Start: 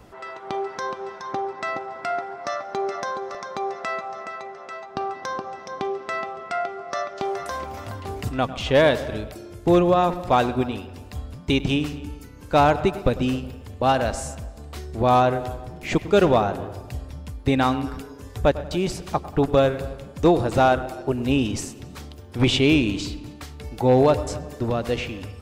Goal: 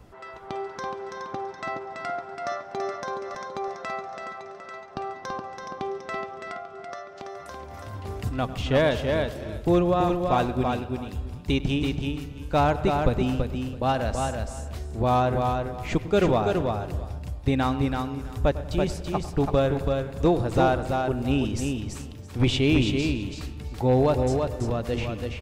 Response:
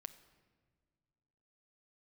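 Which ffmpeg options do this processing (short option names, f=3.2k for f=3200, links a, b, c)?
-filter_complex "[0:a]lowshelf=f=150:g=8,asplit=3[a][b][c];[a]afade=t=out:st=6.4:d=0.02[d];[b]acompressor=threshold=-31dB:ratio=6,afade=t=in:st=6.4:d=0.02,afade=t=out:st=7.92:d=0.02[e];[c]afade=t=in:st=7.92:d=0.02[f];[d][e][f]amix=inputs=3:normalize=0,aecho=1:1:332|664|996:0.596|0.0953|0.0152,volume=-5.5dB"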